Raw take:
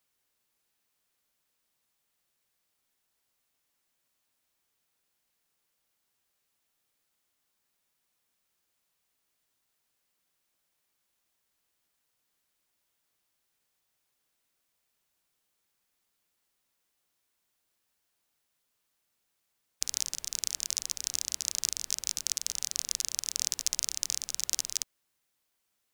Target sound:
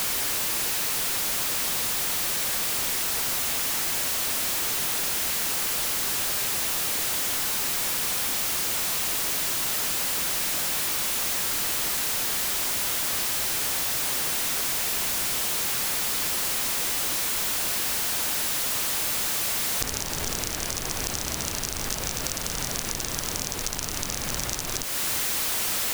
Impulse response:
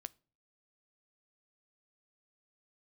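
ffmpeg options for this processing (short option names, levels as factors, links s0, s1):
-af "aeval=exprs='val(0)+0.5*0.0596*sgn(val(0))':c=same,acompressor=threshold=0.0316:ratio=6,volume=1.78"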